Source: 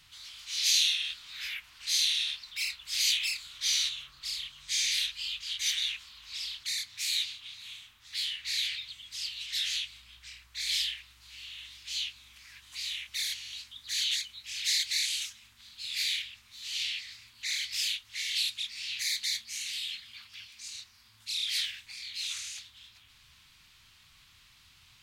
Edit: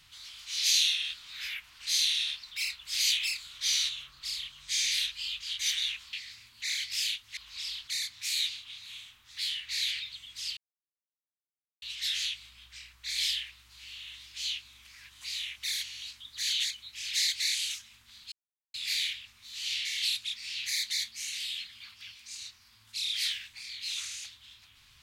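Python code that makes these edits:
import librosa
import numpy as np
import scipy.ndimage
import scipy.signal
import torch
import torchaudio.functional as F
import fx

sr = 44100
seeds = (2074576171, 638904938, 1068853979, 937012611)

y = fx.edit(x, sr, fx.insert_silence(at_s=9.33, length_s=1.25),
    fx.insert_silence(at_s=15.83, length_s=0.42),
    fx.move(start_s=16.94, length_s=1.24, to_s=6.13), tone=tone)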